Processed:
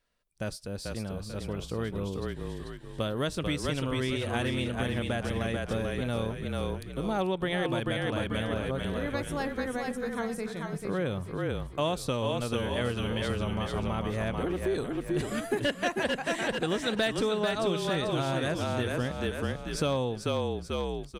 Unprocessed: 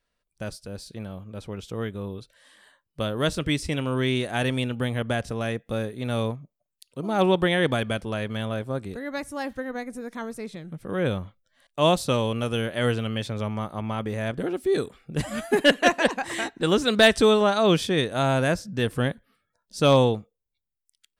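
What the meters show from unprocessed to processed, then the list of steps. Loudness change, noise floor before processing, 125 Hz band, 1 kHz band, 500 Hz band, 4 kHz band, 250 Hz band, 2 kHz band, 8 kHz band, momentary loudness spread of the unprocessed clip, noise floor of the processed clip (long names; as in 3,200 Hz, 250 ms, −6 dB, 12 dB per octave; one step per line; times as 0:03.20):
−6.5 dB, −82 dBFS, −4.0 dB, −6.0 dB, −6.0 dB, −6.5 dB, −4.5 dB, −6.0 dB, −4.5 dB, 18 LU, −43 dBFS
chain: echo with shifted repeats 440 ms, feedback 41%, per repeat −33 Hz, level −4 dB
downward compressor 4 to 1, threshold −27 dBFS, peak gain reduction 13 dB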